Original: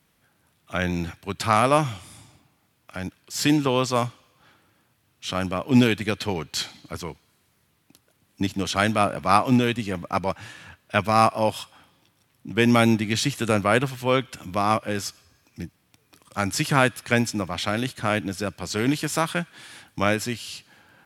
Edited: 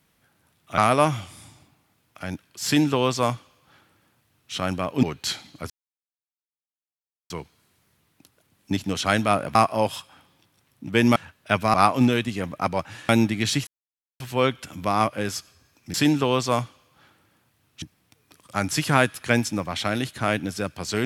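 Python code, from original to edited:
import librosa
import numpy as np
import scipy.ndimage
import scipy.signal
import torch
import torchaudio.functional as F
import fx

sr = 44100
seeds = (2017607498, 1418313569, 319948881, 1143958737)

y = fx.edit(x, sr, fx.cut(start_s=0.78, length_s=0.73),
    fx.duplicate(start_s=3.38, length_s=1.88, to_s=15.64),
    fx.cut(start_s=5.76, length_s=0.57),
    fx.insert_silence(at_s=7.0, length_s=1.6),
    fx.swap(start_s=9.25, length_s=1.35, other_s=11.18, other_length_s=1.61),
    fx.silence(start_s=13.37, length_s=0.53), tone=tone)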